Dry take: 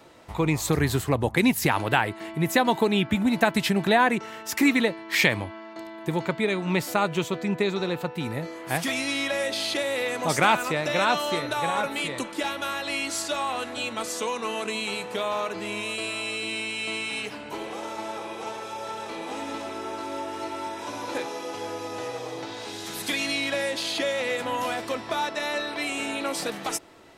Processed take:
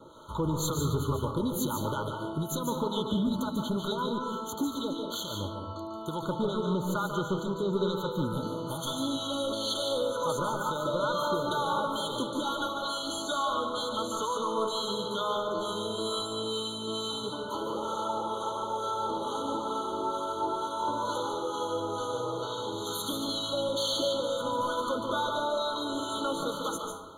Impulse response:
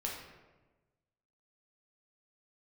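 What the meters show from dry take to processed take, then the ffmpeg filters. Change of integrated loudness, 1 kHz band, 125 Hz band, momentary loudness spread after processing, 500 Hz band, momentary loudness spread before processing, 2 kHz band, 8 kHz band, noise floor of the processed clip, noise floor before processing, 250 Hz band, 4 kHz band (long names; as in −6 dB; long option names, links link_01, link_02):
−4.5 dB, −2.5 dB, −4.0 dB, 5 LU, −3.0 dB, 12 LU, −15.5 dB, −5.0 dB, −38 dBFS, −40 dBFS, −5.0 dB, −3.0 dB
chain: -filter_complex "[0:a]equalizer=frequency=1300:width=1.3:gain=4,acompressor=threshold=-24dB:ratio=16,acrossover=split=880[link_01][link_02];[link_01]aeval=exprs='val(0)*(1-0.7/2+0.7/2*cos(2*PI*2.2*n/s))':channel_layout=same[link_03];[link_02]aeval=exprs='val(0)*(1-0.7/2-0.7/2*cos(2*PI*2.2*n/s))':channel_layout=same[link_04];[link_03][link_04]amix=inputs=2:normalize=0,asoftclip=type=tanh:threshold=-25dB,asuperstop=centerf=730:order=20:qfactor=5,asplit=2[link_05][link_06];[1:a]atrim=start_sample=2205,afade=type=out:start_time=0.38:duration=0.01,atrim=end_sample=17199,adelay=145[link_07];[link_06][link_07]afir=irnorm=-1:irlink=0,volume=-4dB[link_08];[link_05][link_08]amix=inputs=2:normalize=0,afftfilt=real='re*eq(mod(floor(b*sr/1024/1500),2),0)':imag='im*eq(mod(floor(b*sr/1024/1500),2),0)':win_size=1024:overlap=0.75,volume=3dB"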